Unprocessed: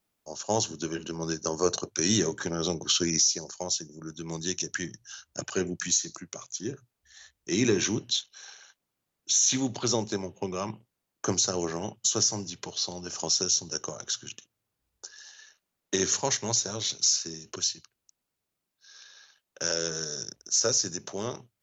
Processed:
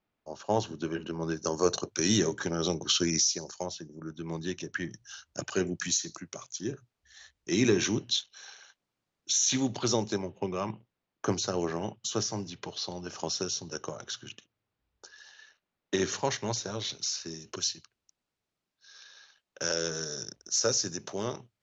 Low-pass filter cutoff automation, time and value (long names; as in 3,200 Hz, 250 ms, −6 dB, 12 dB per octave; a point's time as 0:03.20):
2,800 Hz
from 0:01.37 5,900 Hz
from 0:03.66 2,700 Hz
from 0:04.91 5,900 Hz
from 0:10.18 3,700 Hz
from 0:17.28 5,800 Hz